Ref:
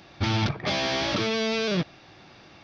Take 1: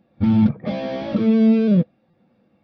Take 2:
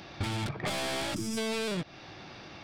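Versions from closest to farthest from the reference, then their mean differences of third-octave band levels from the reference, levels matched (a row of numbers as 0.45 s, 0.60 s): 2, 1; 7.0 dB, 14.0 dB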